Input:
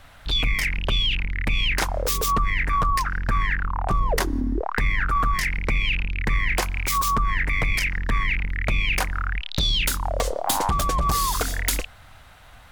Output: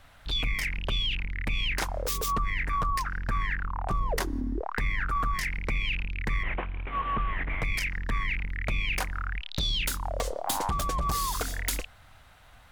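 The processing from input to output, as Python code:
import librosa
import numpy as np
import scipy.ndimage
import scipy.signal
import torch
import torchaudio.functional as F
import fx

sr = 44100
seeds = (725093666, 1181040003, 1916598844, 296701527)

y = fx.cvsd(x, sr, bps=16000, at=(6.43, 7.62))
y = y * librosa.db_to_amplitude(-6.5)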